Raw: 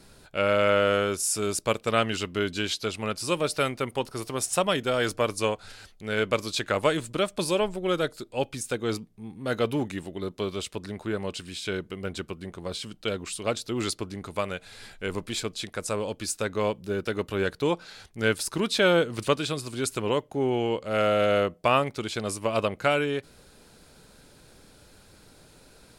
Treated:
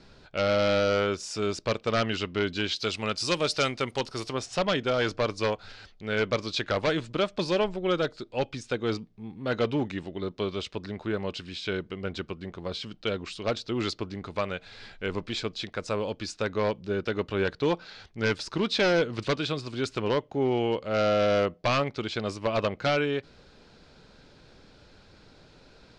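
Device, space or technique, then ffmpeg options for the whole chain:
synthesiser wavefolder: -filter_complex "[0:a]aeval=exprs='0.133*(abs(mod(val(0)/0.133+3,4)-2)-1)':c=same,lowpass=f=5.4k:w=0.5412,lowpass=f=5.4k:w=1.3066,asettb=1/sr,asplit=3[a][b][c];[a]atrim=end=2.764[d];[b]atrim=start=2.76:end=4.33,asetpts=PTS-STARTPTS,afade=t=in:d=0.004:c=qsin,afade=t=out:st=1.566:d=0.004:c=qsin,aemphasis=mode=production:type=75fm[e];[c]atrim=start=4.326[f];[d][e]acrossfade=d=0.004:c1=hsin:c2=qsin[g];[g][f]acrossfade=d=0.004:c1=qsin:c2=hsin"

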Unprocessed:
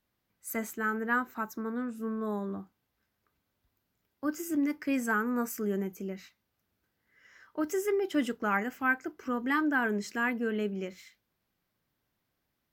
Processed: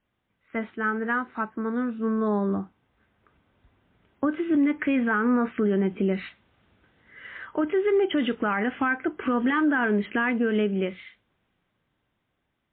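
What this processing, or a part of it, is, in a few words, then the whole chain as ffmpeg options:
low-bitrate web radio: -filter_complex "[0:a]asettb=1/sr,asplit=3[a][b][c];[a]atrim=end=2.284[d];[b]atrim=start=2.28:end=4.29,asetpts=PTS-STARTPTS,afade=t=in:d=0.004:c=qsin,afade=t=out:st=2.006:d=0.004:c=qsin,lowpass=f=2.7k:p=1[e];[c]atrim=start=4.286[f];[d][e]acrossfade=d=0.004:c1=hsin:c2=qsin[g];[g][f]acrossfade=d=0.004:c1=qsin:c2=hsin,dynaudnorm=f=470:g=13:m=15dB,alimiter=limit=-20dB:level=0:latency=1:release=202,volume=4.5dB" -ar 8000 -c:a libmp3lame -b:a 24k

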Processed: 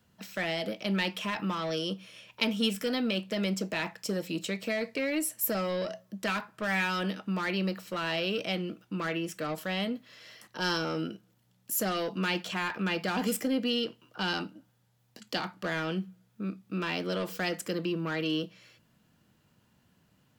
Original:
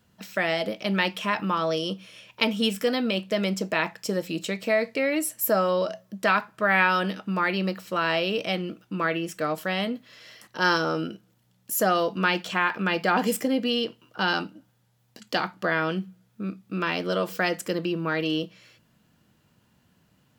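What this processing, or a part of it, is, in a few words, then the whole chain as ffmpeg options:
one-band saturation: -filter_complex "[0:a]acrossover=split=360|2200[a][b][c];[b]asoftclip=type=tanh:threshold=-30dB[d];[a][d][c]amix=inputs=3:normalize=0,volume=-3dB"

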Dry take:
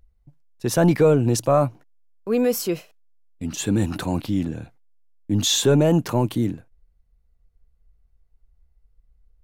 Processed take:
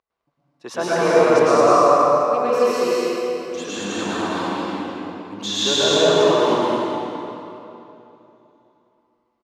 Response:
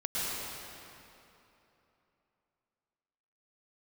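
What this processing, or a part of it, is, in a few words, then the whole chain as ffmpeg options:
station announcement: -filter_complex "[0:a]highpass=470,lowpass=4.8k,equalizer=f=1.1k:t=o:w=0.35:g=9.5,aecho=1:1:209.9|277:0.794|0.355[a];[1:a]atrim=start_sample=2205[b];[a][b]afir=irnorm=-1:irlink=0,volume=-2dB"

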